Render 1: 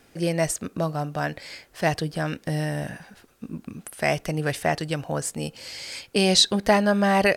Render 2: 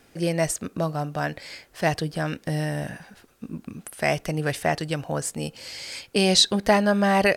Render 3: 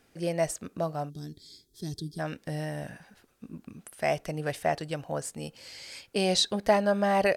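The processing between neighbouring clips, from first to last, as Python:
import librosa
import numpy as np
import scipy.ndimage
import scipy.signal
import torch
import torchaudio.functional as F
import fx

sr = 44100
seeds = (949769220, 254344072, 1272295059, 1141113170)

y1 = x
y2 = fx.spec_box(y1, sr, start_s=1.1, length_s=1.09, low_hz=440.0, high_hz=3200.0, gain_db=-24)
y2 = fx.wow_flutter(y2, sr, seeds[0], rate_hz=2.1, depth_cents=21.0)
y2 = fx.dynamic_eq(y2, sr, hz=630.0, q=1.3, threshold_db=-33.0, ratio=4.0, max_db=6)
y2 = y2 * 10.0 ** (-8.0 / 20.0)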